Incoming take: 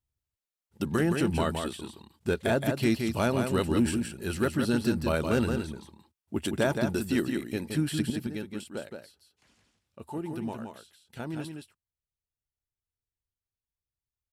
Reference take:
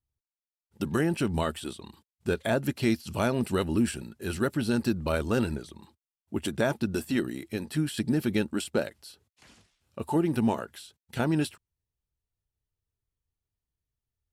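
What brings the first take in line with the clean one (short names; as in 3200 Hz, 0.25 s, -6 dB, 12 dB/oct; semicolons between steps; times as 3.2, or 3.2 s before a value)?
clip repair -16.5 dBFS; inverse comb 0.17 s -5.5 dB; gain 0 dB, from 8.1 s +10 dB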